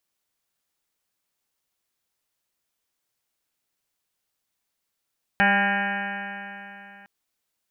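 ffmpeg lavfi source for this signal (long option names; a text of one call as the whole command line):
ffmpeg -f lavfi -i "aevalsrc='0.0668*pow(10,-3*t/3.21)*sin(2*PI*198.07*t)+0.0133*pow(10,-3*t/3.21)*sin(2*PI*396.53*t)+0.0316*pow(10,-3*t/3.21)*sin(2*PI*595.79*t)+0.0891*pow(10,-3*t/3.21)*sin(2*PI*796.23*t)+0.0211*pow(10,-3*t/3.21)*sin(2*PI*998.26*t)+0.00794*pow(10,-3*t/3.21)*sin(2*PI*1202.24*t)+0.0422*pow(10,-3*t/3.21)*sin(2*PI*1408.57*t)+0.0944*pow(10,-3*t/3.21)*sin(2*PI*1617.6*t)+0.0841*pow(10,-3*t/3.21)*sin(2*PI*1829.72*t)+0.0119*pow(10,-3*t/3.21)*sin(2*PI*2045.25*t)+0.0335*pow(10,-3*t/3.21)*sin(2*PI*2264.56*t)+0.0355*pow(10,-3*t/3.21)*sin(2*PI*2487.98*t)+0.00841*pow(10,-3*t/3.21)*sin(2*PI*2715.82*t)+0.0188*pow(10,-3*t/3.21)*sin(2*PI*2948.4*t)':duration=1.66:sample_rate=44100" out.wav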